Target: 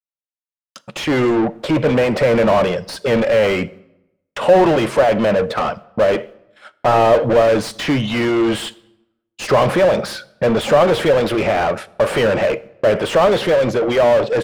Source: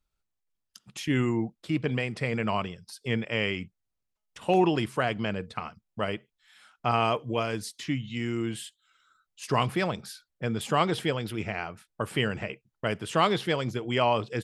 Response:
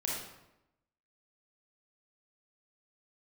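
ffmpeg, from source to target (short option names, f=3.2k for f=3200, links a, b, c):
-filter_complex "[0:a]agate=range=-49dB:threshold=-53dB:ratio=16:detection=peak,equalizer=f=560:t=o:w=0.45:g=14.5,dynaudnorm=f=240:g=13:m=7.5dB,asplit=2[a][b];[b]highpass=f=720:p=1,volume=28dB,asoftclip=type=tanh:threshold=-14.5dB[c];[a][c]amix=inputs=2:normalize=0,lowpass=f=1.2k:p=1,volume=-6dB,asplit=2[d][e];[1:a]atrim=start_sample=2205[f];[e][f]afir=irnorm=-1:irlink=0,volume=-22.5dB[g];[d][g]amix=inputs=2:normalize=0,volume=5dB"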